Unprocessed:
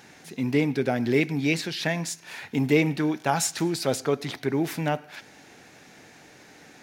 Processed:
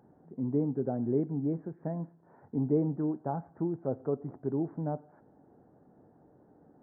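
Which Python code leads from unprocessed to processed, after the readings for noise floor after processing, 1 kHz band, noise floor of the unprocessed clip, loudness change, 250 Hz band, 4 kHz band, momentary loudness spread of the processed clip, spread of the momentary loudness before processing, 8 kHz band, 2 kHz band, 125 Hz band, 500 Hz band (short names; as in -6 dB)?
-62 dBFS, -11.0 dB, -52 dBFS, -7.0 dB, -5.5 dB, under -40 dB, 9 LU, 10 LU, under -40 dB, under -30 dB, -5.0 dB, -7.0 dB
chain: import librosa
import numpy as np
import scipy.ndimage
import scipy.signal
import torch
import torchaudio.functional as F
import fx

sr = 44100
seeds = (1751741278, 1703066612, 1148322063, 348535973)

y = scipy.ndimage.gaussian_filter1d(x, 10.0, mode='constant')
y = y * librosa.db_to_amplitude(-5.0)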